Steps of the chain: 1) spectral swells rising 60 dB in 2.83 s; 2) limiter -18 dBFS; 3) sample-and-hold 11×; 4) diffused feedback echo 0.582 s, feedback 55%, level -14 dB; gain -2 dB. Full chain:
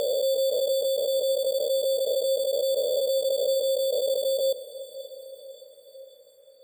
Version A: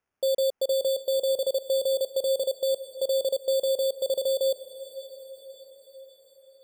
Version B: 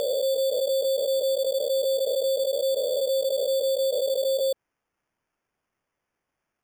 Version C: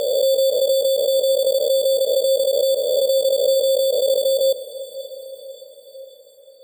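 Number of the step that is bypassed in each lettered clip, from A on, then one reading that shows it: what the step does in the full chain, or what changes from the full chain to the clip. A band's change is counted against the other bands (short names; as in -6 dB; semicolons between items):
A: 1, loudness change -1.5 LU; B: 4, echo-to-direct -12.5 dB to none; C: 2, mean gain reduction 6.5 dB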